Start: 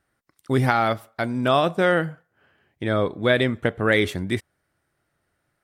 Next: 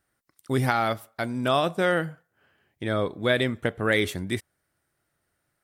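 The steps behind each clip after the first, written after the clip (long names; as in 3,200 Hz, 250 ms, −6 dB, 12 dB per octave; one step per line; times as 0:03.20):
high-shelf EQ 5,600 Hz +8.5 dB
level −4 dB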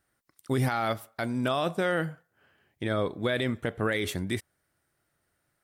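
brickwall limiter −17.5 dBFS, peak gain reduction 9 dB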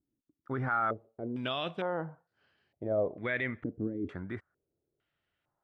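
low-pass on a step sequencer 2.2 Hz 290–4,500 Hz
level −8.5 dB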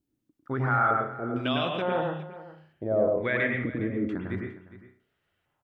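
single-tap delay 410 ms −16.5 dB
on a send at −1 dB: convolution reverb, pre-delay 99 ms
on the sum: level +4 dB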